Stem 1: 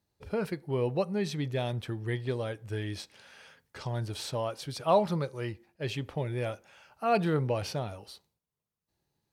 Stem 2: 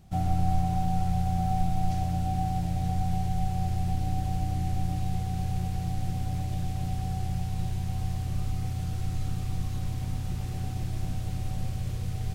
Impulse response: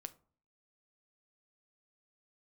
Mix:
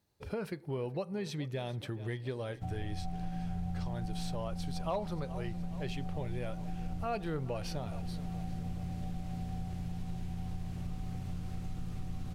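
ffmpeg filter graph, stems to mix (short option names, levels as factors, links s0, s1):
-filter_complex "[0:a]volume=5.96,asoftclip=hard,volume=0.168,volume=1.06,asplit=4[s0][s1][s2][s3];[s1]volume=0.422[s4];[s2]volume=0.126[s5];[1:a]highshelf=f=3700:g=-8,acrossover=split=210[s6][s7];[s7]acompressor=threshold=0.02:ratio=6[s8];[s6][s8]amix=inputs=2:normalize=0,adelay=2500,volume=0.944,asplit=2[s9][s10];[s10]volume=0.562[s11];[s3]apad=whole_len=654806[s12];[s9][s12]sidechaincompress=threshold=0.0282:ratio=8:attack=16:release=1120[s13];[2:a]atrim=start_sample=2205[s14];[s4][s14]afir=irnorm=-1:irlink=0[s15];[s5][s11]amix=inputs=2:normalize=0,aecho=0:1:421|842|1263|1684|2105|2526|2947|3368|3789:1|0.59|0.348|0.205|0.121|0.0715|0.0422|0.0249|0.0147[s16];[s0][s13][s15][s16]amix=inputs=4:normalize=0,acompressor=threshold=0.0126:ratio=2.5"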